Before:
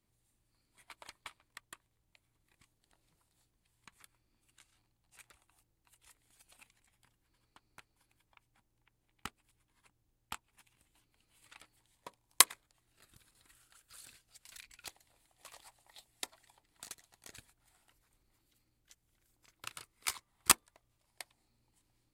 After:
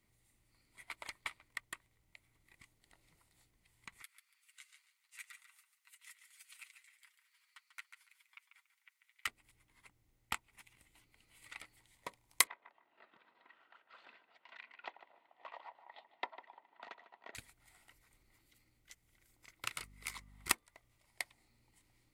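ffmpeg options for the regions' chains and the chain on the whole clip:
ffmpeg -i in.wav -filter_complex "[0:a]asettb=1/sr,asplit=3[link_01][link_02][link_03];[link_01]atrim=end=4.024[link_04];[link_02]atrim=start=4.02:end=9.27,asetpts=PTS-STARTPTS,afade=type=in:duration=0.004:curve=qsin,afade=type=out:start_time=5.246:duration=0.004:curve=qsin,highpass=frequency=1300:width=0.5412,highpass=frequency=1300:width=1.3066,aecho=1:1:7.3:0.56,atrim=end_sample=231525,aecho=1:1:142|284|426:0.355|0.0816|0.0188,atrim=end_sample=231525[link_05];[link_03]atrim=start=9.266[link_06];[link_04][link_05]acrossfade=duration=0.004:curve1=hsin:curve2=qsin[link_07];[link_07][link_06]acrossfade=duration=0.004:curve1=qsin:curve2=hsin,asettb=1/sr,asplit=3[link_08][link_09][link_10];[link_08]atrim=end=12.474[link_11];[link_09]atrim=start=12.47:end=17.35,asetpts=PTS-STARTPTS,afade=type=in:duration=0.004:curve=qsin,afade=type=out:start_time=4.876:duration=0.004:curve=qsin,highpass=frequency=250:width=0.5412,highpass=frequency=250:width=1.3066,equalizer=frequency=300:width_type=q:width=4:gain=-5,equalizer=frequency=660:width_type=q:width=4:gain=6,equalizer=frequency=950:width_type=q:width=4:gain=9,equalizer=frequency=2200:width_type=q:width=4:gain=-9,lowpass=frequency=2800:width=0.5412,lowpass=frequency=2800:width=1.3066,asplit=2[link_12][link_13];[link_13]adelay=150,lowpass=frequency=2200:poles=1,volume=-12dB,asplit=2[link_14][link_15];[link_15]adelay=150,lowpass=frequency=2200:poles=1,volume=0.21,asplit=2[link_16][link_17];[link_17]adelay=150,lowpass=frequency=2200:poles=1,volume=0.21[link_18];[link_12][link_14][link_16][link_18]amix=inputs=4:normalize=0,atrim=end_sample=215208[link_19];[link_10]atrim=start=17.346[link_20];[link_11][link_19]acrossfade=duration=0.004:curve1=hsin:curve2=qsin[link_21];[link_21][link_20]acrossfade=duration=0.004:curve1=qsin:curve2=hsin,asettb=1/sr,asplit=3[link_22][link_23][link_24];[link_22]atrim=end=19.804[link_25];[link_23]atrim=start=19.8:end=20.51,asetpts=PTS-STARTPTS,afade=type=in:duration=0.004:curve=qsin,afade=type=out:start_time=0.706:duration=0.004:curve=qsin,acompressor=threshold=-43dB:ratio=12:attack=3.2:release=140:knee=1:detection=peak,aeval=exprs='val(0)+0.000794*(sin(2*PI*50*n/s)+sin(2*PI*2*50*n/s)/2+sin(2*PI*3*50*n/s)/3+sin(2*PI*4*50*n/s)/4+sin(2*PI*5*50*n/s)/5)':channel_layout=same[link_26];[link_24]atrim=start=20.506[link_27];[link_25][link_26]acrossfade=duration=0.004:curve1=hsin:curve2=qsin[link_28];[link_28][link_27]acrossfade=duration=0.004:curve1=qsin:curve2=hsin,alimiter=limit=-12.5dB:level=0:latency=1:release=307,equalizer=frequency=2000:width_type=o:width=0.43:gain=10.5,bandreject=frequency=1700:width=8.3,volume=3dB" out.wav

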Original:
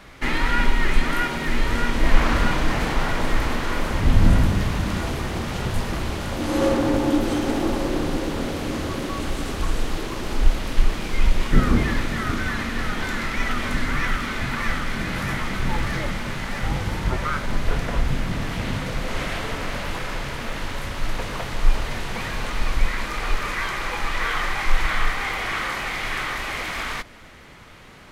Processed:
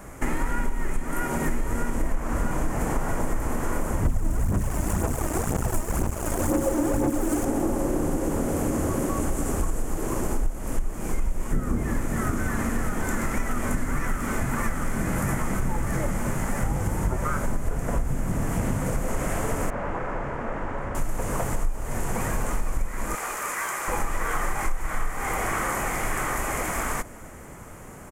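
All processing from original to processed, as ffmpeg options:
ffmpeg -i in.wav -filter_complex "[0:a]asettb=1/sr,asplit=3[link_01][link_02][link_03];[link_01]atrim=end=4.054[link_04];[link_02]atrim=start=4.05:end=7.45,asetpts=PTS-STARTPTS,afade=type=in:duration=0.004:curve=qsin,afade=type=out:start_time=3.396:duration=0.004:curve=qsin,acrusher=bits=3:mix=0:aa=0.5,aphaser=in_gain=1:out_gain=1:delay=3.3:decay=0.54:speed=2:type=sinusoidal[link_05];[link_03]atrim=start=7.446[link_06];[link_04][link_05]acrossfade=duration=0.004:curve1=hsin:curve2=qsin[link_07];[link_07][link_06]acrossfade=duration=0.004:curve1=qsin:curve2=hsin,asettb=1/sr,asplit=3[link_08][link_09][link_10];[link_08]atrim=end=19.704[link_11];[link_09]atrim=start=19.7:end=20.95,asetpts=PTS-STARTPTS,afade=type=in:duration=0.004:curve=qsin,afade=type=out:start_time=1.246:duration=0.004:curve=qsin,lowpass=1900,lowshelf=frequency=260:gain=-8[link_12];[link_10]atrim=start=20.946[link_13];[link_11][link_12]acrossfade=duration=0.004:curve1=hsin:curve2=qsin[link_14];[link_14][link_13]acrossfade=duration=0.004:curve1=qsin:curve2=hsin,asettb=1/sr,asplit=3[link_15][link_16][link_17];[link_15]atrim=end=23.154[link_18];[link_16]atrim=start=23.15:end=23.88,asetpts=PTS-STARTPTS,afade=type=in:duration=0.004:curve=qsin,afade=type=out:start_time=0.726:duration=0.004:curve=qsin,highpass=frequency=1100:poles=1,asoftclip=type=hard:threshold=-21dB[link_19];[link_17]atrim=start=23.876[link_20];[link_18][link_19]acrossfade=duration=0.004:curve1=hsin:curve2=qsin[link_21];[link_21][link_20]acrossfade=duration=0.004:curve1=qsin:curve2=hsin,firequalizer=gain_entry='entry(650,0);entry(3900,-21);entry(7100,6)':delay=0.05:min_phase=1,acompressor=threshold=-26dB:ratio=6,volume=5dB" out.wav

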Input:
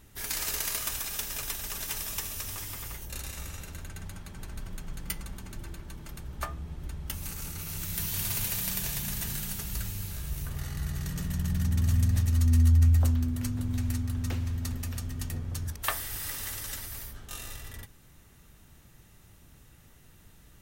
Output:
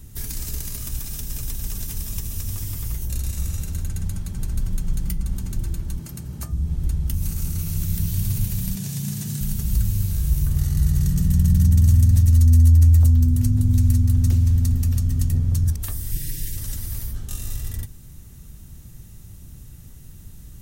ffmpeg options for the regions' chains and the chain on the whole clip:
ffmpeg -i in.wav -filter_complex "[0:a]asettb=1/sr,asplit=3[link_01][link_02][link_03];[link_01]atrim=end=5.994[link_04];[link_02]atrim=start=5.99:end=6.52,asetpts=PTS-STARTPTS,afade=type=in:duration=0.004:curve=qsin,afade=type=out:start_time=0.526:duration=0.004:curve=qsin,highpass=110,bandreject=frequency=3500:width=11[link_05];[link_03]atrim=start=6.516[link_06];[link_04][link_05]acrossfade=duration=0.004:curve1=hsin:curve2=qsin[link_07];[link_07][link_06]acrossfade=duration=0.004:curve1=qsin:curve2=hsin,asettb=1/sr,asplit=3[link_08][link_09][link_10];[link_08]atrim=end=8.754[link_11];[link_09]atrim=start=8.75:end=9.41,asetpts=PTS-STARTPTS,afade=type=in:duration=0.004:curve=qsin,afade=type=out:start_time=0.656:duration=0.004:curve=qsin,highpass=frequency=120:width=0.5412,highpass=frequency=120:width=1.3066,acrossover=split=9700[link_12][link_13];[link_13]acompressor=threshold=-44dB:ratio=4:attack=1:release=60[link_14];[link_12][link_14]amix=inputs=2:normalize=0[link_15];[link_10]atrim=start=9.406[link_16];[link_11][link_15]acrossfade=duration=0.004:curve1=hsin:curve2=qsin[link_17];[link_17][link_16]acrossfade=duration=0.004:curve1=qsin:curve2=hsin,asettb=1/sr,asplit=3[link_18][link_19][link_20];[link_18]atrim=end=16.114[link_21];[link_19]atrim=start=16.11:end=16.57,asetpts=PTS-STARTPTS,afade=type=in:duration=0.004:curve=qsin,afade=type=out:start_time=0.456:duration=0.004:curve=qsin,asuperstop=centerf=920:order=12:qfactor=0.84,aecho=1:1:6.3:0.81,atrim=end_sample=20286[link_22];[link_20]atrim=start=16.566[link_23];[link_21][link_22]acrossfade=duration=0.004:curve1=hsin:curve2=qsin[link_24];[link_24][link_23]acrossfade=duration=0.004:curve1=qsin:curve2=hsin,bass=frequency=250:gain=7,treble=frequency=4000:gain=12,acrossover=split=330|4300[link_25][link_26][link_27];[link_25]acompressor=threshold=-20dB:ratio=4[link_28];[link_26]acompressor=threshold=-46dB:ratio=4[link_29];[link_27]acompressor=threshold=-33dB:ratio=4[link_30];[link_28][link_29][link_30]amix=inputs=3:normalize=0,lowshelf=frequency=380:gain=10,volume=-1dB" out.wav

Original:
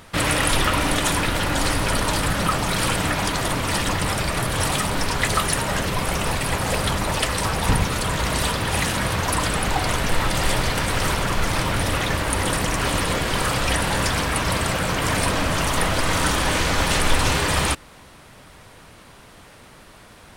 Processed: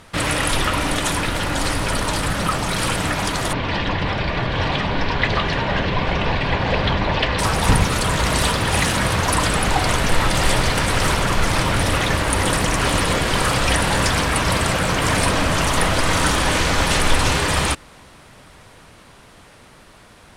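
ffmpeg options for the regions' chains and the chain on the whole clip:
ffmpeg -i in.wav -filter_complex "[0:a]asettb=1/sr,asplit=3[link_01][link_02][link_03];[link_01]atrim=end=3.534[link_04];[link_02]atrim=start=3.53:end=7.39,asetpts=PTS-STARTPTS,afade=type=in:duration=0.004:curve=qsin,afade=type=out:start_time=3.856:duration=0.004:curve=qsin,lowpass=frequency=4000:width=0.5412,lowpass=frequency=4000:width=1.3066,bandreject=frequency=1300:width=8.3[link_05];[link_03]atrim=start=7.386[link_06];[link_04][link_05]acrossfade=duration=0.004:curve1=hsin:curve2=qsin[link_07];[link_07][link_06]acrossfade=duration=0.004:curve1=qsin:curve2=hsin,dynaudnorm=framelen=1000:gausssize=9:maxgain=6.5dB,lowpass=12000" out.wav

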